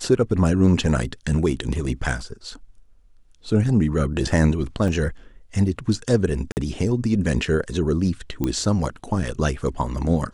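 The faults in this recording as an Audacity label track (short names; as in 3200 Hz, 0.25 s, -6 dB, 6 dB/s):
4.880000	4.880000	gap 2.6 ms
6.520000	6.570000	gap 49 ms
8.440000	8.440000	pop -11 dBFS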